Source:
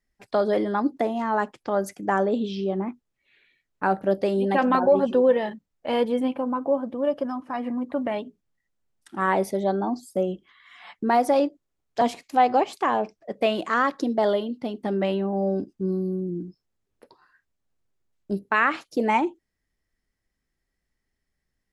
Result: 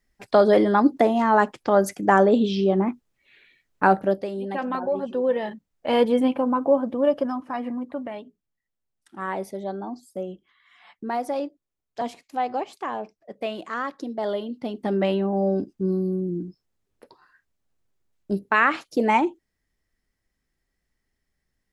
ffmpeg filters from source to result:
-af "volume=26dB,afade=t=out:st=3.85:d=0.41:silence=0.223872,afade=t=in:st=5.12:d=0.91:silence=0.281838,afade=t=out:st=7.04:d=1.07:silence=0.281838,afade=t=in:st=14.16:d=0.78:silence=0.354813"

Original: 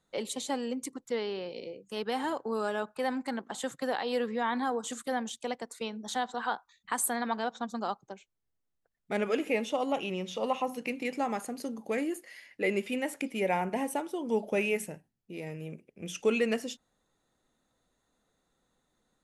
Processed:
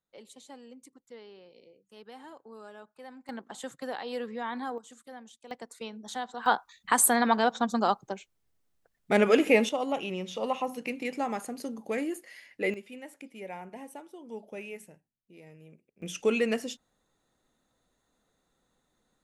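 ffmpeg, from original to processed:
-af "asetnsamples=n=441:p=0,asendcmd='3.29 volume volume -4.5dB;4.78 volume volume -14dB;5.51 volume volume -3.5dB;6.46 volume volume 8dB;9.69 volume volume 0dB;12.74 volume volume -12dB;16.02 volume volume 1dB',volume=-15.5dB"

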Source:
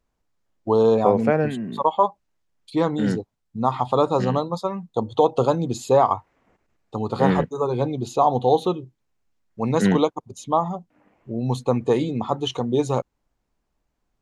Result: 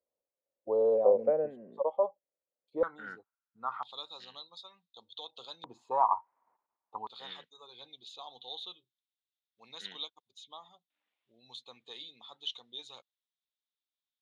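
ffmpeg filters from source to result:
-af "asetnsamples=n=441:p=0,asendcmd='2.83 bandpass f 1400;3.83 bandpass f 3700;5.64 bandpass f 960;7.07 bandpass f 3600',bandpass=f=540:t=q:w=7.5:csg=0"

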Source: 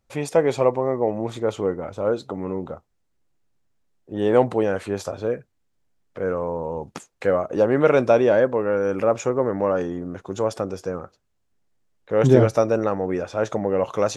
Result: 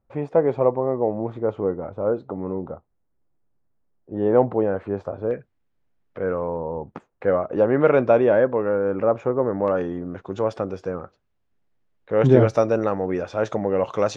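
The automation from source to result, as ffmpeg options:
-af "asetnsamples=n=441:p=0,asendcmd='5.31 lowpass f 2900;6.56 lowpass f 1400;7.28 lowpass f 2300;8.69 lowpass f 1500;9.68 lowpass f 3300;12.47 lowpass f 5200',lowpass=1.2k"

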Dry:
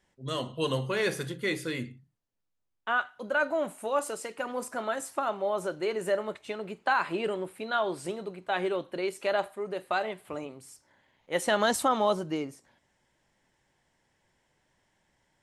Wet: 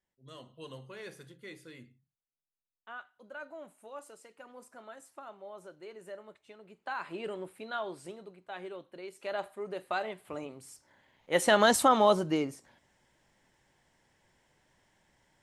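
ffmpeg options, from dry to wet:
-af "volume=9.5dB,afade=t=in:st=6.65:d=0.8:silence=0.281838,afade=t=out:st=7.45:d=0.98:silence=0.446684,afade=t=in:st=9.09:d=0.54:silence=0.354813,afade=t=in:st=10.2:d=1.25:silence=0.473151"

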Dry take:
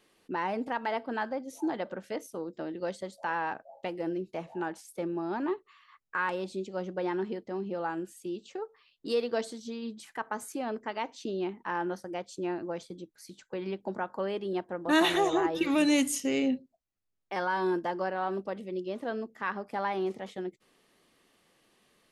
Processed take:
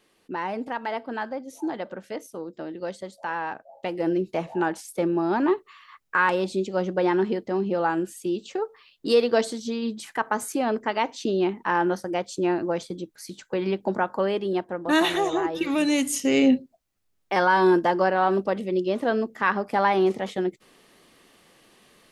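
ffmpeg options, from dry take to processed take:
-af "volume=18dB,afade=t=in:st=3.71:d=0.44:silence=0.421697,afade=t=out:st=13.99:d=1.11:silence=0.421697,afade=t=in:st=16.03:d=0.5:silence=0.375837"

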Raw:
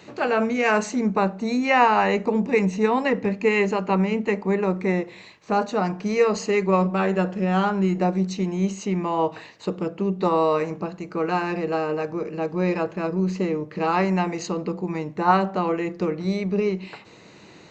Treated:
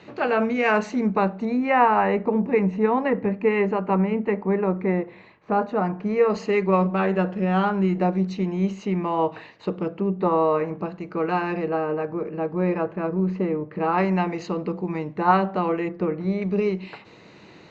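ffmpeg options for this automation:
-af "asetnsamples=n=441:p=0,asendcmd='1.45 lowpass f 1800;6.3 lowpass f 3300;10 lowpass f 2000;10.79 lowpass f 3200;11.68 lowpass f 1900;13.98 lowpass f 3400;15.89 lowpass f 2100;16.42 lowpass f 4400',lowpass=3.6k"

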